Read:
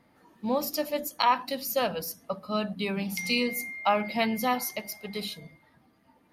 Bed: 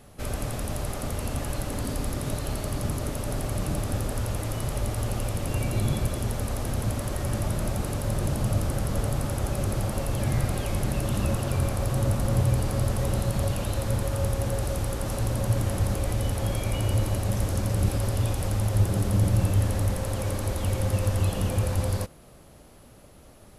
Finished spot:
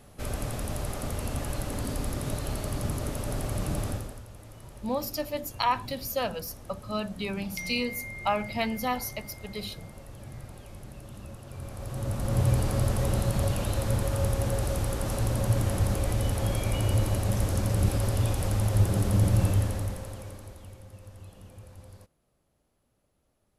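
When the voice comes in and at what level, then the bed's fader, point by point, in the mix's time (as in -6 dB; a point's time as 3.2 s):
4.40 s, -2.5 dB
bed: 3.88 s -2 dB
4.25 s -17.5 dB
11.42 s -17.5 dB
12.48 s -0.5 dB
19.49 s -0.5 dB
20.86 s -22.5 dB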